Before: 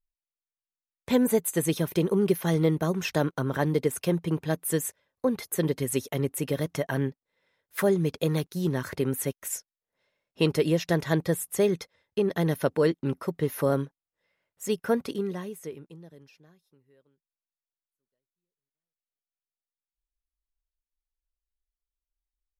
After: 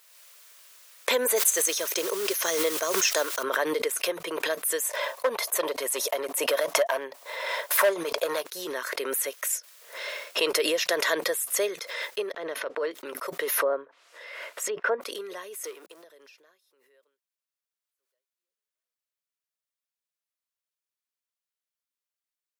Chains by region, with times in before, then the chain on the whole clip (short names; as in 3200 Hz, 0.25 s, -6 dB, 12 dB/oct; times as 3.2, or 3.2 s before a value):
1.36–3.43 bell 6300 Hz +12.5 dB 0.65 oct + modulation noise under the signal 19 dB
4.82–8.45 HPF 45 Hz + band shelf 780 Hz +8.5 dB 1.1 oct + hard clip -17.5 dBFS
12.32–12.91 transient shaper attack -11 dB, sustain -6 dB + tape spacing loss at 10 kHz 22 dB
13.58–15.01 high shelf 5100 Hz -7.5 dB + treble ducked by the level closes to 1300 Hz, closed at -24.5 dBFS
15.64–16.04 G.711 law mismatch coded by mu + steep high-pass 180 Hz + tone controls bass +1 dB, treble +4 dB
whole clip: HPF 520 Hz 24 dB/oct; bell 800 Hz -13 dB 0.22 oct; backwards sustainer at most 33 dB/s; gain +3.5 dB